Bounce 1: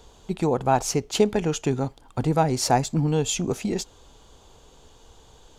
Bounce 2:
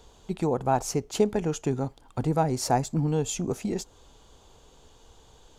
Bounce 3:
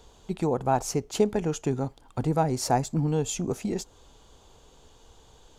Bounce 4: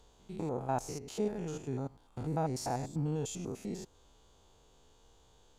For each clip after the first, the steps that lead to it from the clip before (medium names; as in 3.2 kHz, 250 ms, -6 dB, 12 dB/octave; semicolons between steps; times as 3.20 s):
dynamic bell 3.2 kHz, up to -6 dB, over -43 dBFS, Q 0.78; trim -3 dB
no audible change
spectrogram pixelated in time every 100 ms; trim -7.5 dB